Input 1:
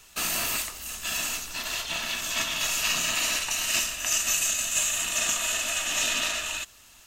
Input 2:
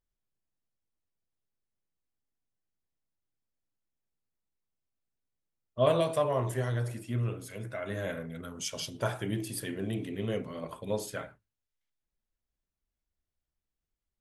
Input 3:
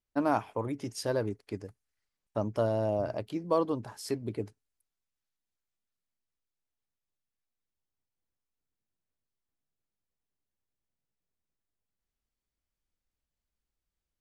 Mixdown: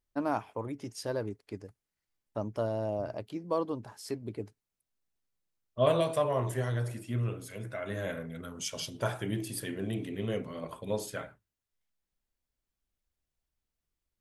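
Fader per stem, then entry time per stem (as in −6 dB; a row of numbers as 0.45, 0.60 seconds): muted, −0.5 dB, −3.5 dB; muted, 0.00 s, 0.00 s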